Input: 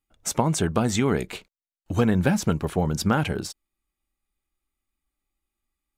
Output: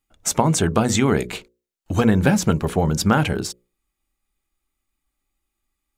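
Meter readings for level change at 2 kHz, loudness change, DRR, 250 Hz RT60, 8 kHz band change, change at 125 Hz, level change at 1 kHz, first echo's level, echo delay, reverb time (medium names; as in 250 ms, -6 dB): +5.0 dB, +4.5 dB, no reverb, no reverb, +6.0 dB, +4.0 dB, +5.0 dB, no echo, no echo, no reverb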